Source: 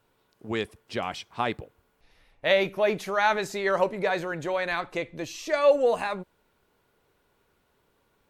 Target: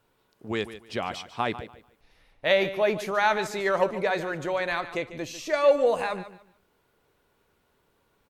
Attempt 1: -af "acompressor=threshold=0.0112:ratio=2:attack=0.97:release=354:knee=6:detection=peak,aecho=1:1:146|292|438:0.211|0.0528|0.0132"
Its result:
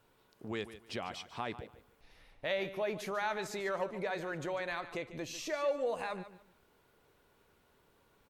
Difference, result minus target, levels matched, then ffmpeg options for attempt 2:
compression: peak gain reduction +14 dB
-af "aecho=1:1:146|292|438:0.211|0.0528|0.0132"

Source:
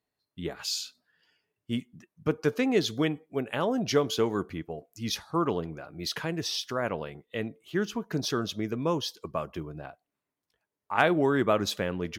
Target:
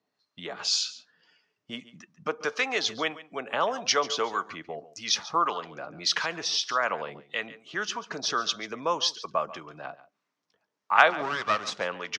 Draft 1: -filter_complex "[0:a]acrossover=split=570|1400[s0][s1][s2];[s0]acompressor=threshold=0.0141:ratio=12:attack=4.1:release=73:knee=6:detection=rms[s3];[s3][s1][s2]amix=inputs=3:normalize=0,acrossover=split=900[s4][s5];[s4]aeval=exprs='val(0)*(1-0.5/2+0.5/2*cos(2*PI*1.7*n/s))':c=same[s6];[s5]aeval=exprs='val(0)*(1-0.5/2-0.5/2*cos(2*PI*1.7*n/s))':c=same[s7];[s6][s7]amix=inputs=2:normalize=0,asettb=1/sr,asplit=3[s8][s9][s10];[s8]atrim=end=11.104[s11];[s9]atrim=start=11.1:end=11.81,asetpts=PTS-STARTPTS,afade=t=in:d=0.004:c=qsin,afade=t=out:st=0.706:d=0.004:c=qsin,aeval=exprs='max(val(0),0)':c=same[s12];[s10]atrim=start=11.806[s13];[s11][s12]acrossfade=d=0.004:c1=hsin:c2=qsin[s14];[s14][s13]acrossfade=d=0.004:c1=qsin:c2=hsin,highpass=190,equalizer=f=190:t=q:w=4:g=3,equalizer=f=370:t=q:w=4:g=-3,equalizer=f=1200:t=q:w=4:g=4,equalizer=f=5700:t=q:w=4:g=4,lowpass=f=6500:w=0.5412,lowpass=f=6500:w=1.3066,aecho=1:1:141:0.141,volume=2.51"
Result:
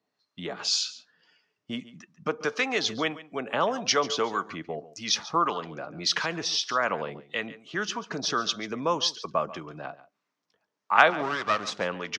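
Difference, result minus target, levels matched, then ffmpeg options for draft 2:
compression: peak gain reduction -8 dB
-filter_complex "[0:a]acrossover=split=570|1400[s0][s1][s2];[s0]acompressor=threshold=0.00501:ratio=12:attack=4.1:release=73:knee=6:detection=rms[s3];[s3][s1][s2]amix=inputs=3:normalize=0,acrossover=split=900[s4][s5];[s4]aeval=exprs='val(0)*(1-0.5/2+0.5/2*cos(2*PI*1.7*n/s))':c=same[s6];[s5]aeval=exprs='val(0)*(1-0.5/2-0.5/2*cos(2*PI*1.7*n/s))':c=same[s7];[s6][s7]amix=inputs=2:normalize=0,asettb=1/sr,asplit=3[s8][s9][s10];[s8]atrim=end=11.104[s11];[s9]atrim=start=11.1:end=11.81,asetpts=PTS-STARTPTS,afade=t=in:d=0.004:c=qsin,afade=t=out:st=0.706:d=0.004:c=qsin,aeval=exprs='max(val(0),0)':c=same[s12];[s10]atrim=start=11.806[s13];[s11][s12]acrossfade=d=0.004:c1=hsin:c2=qsin[s14];[s14][s13]acrossfade=d=0.004:c1=qsin:c2=hsin,highpass=190,equalizer=f=190:t=q:w=4:g=3,equalizer=f=370:t=q:w=4:g=-3,equalizer=f=1200:t=q:w=4:g=4,equalizer=f=5700:t=q:w=4:g=4,lowpass=f=6500:w=0.5412,lowpass=f=6500:w=1.3066,aecho=1:1:141:0.141,volume=2.51"

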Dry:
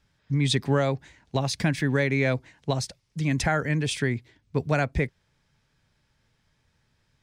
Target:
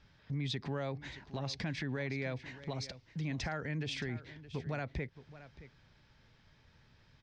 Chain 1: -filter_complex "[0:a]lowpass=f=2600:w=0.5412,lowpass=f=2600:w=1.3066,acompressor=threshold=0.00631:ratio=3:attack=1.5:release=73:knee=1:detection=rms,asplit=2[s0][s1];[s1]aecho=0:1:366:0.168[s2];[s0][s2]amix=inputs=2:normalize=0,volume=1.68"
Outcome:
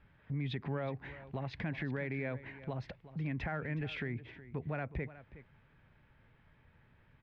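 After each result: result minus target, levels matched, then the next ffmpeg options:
echo 255 ms early; 4 kHz band -8.0 dB
-filter_complex "[0:a]lowpass=f=2600:w=0.5412,lowpass=f=2600:w=1.3066,acompressor=threshold=0.00631:ratio=3:attack=1.5:release=73:knee=1:detection=rms,asplit=2[s0][s1];[s1]aecho=0:1:621:0.168[s2];[s0][s2]amix=inputs=2:normalize=0,volume=1.68"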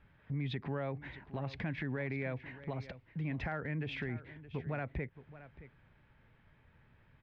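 4 kHz band -8.0 dB
-filter_complex "[0:a]lowpass=f=5400:w=0.5412,lowpass=f=5400:w=1.3066,acompressor=threshold=0.00631:ratio=3:attack=1.5:release=73:knee=1:detection=rms,asplit=2[s0][s1];[s1]aecho=0:1:621:0.168[s2];[s0][s2]amix=inputs=2:normalize=0,volume=1.68"

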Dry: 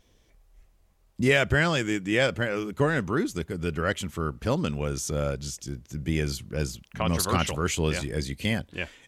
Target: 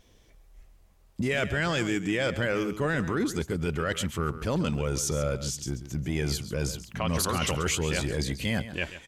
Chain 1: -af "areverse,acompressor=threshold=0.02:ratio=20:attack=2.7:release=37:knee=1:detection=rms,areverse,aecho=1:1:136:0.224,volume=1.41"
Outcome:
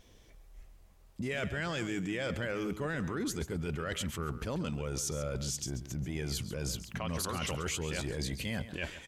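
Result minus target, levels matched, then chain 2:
compression: peak gain reduction +8 dB
-af "areverse,acompressor=threshold=0.0531:ratio=20:attack=2.7:release=37:knee=1:detection=rms,areverse,aecho=1:1:136:0.224,volume=1.41"

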